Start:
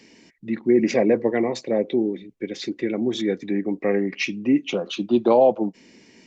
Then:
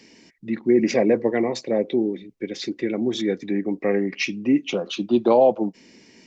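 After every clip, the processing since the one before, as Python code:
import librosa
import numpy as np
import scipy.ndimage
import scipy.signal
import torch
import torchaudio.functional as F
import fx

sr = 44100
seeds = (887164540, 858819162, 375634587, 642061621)

y = fx.peak_eq(x, sr, hz=5200.0, db=3.0, octaves=0.52)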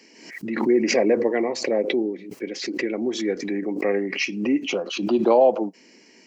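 y = scipy.signal.sosfilt(scipy.signal.butter(2, 280.0, 'highpass', fs=sr, output='sos'), x)
y = fx.notch(y, sr, hz=3600.0, q=5.5)
y = fx.pre_swell(y, sr, db_per_s=70.0)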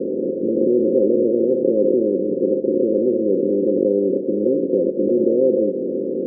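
y = fx.bin_compress(x, sr, power=0.2)
y = scipy.signal.sosfilt(scipy.signal.cheby1(6, 6, 550.0, 'lowpass', fs=sr, output='sos'), y)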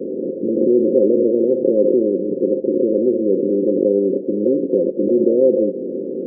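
y = fx.bin_expand(x, sr, power=1.5)
y = fx.low_shelf(y, sr, hz=82.0, db=-8.5)
y = y * 10.0 ** (4.5 / 20.0)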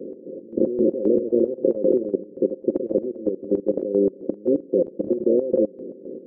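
y = fx.level_steps(x, sr, step_db=17)
y = fx.chopper(y, sr, hz=3.8, depth_pct=65, duty_pct=50)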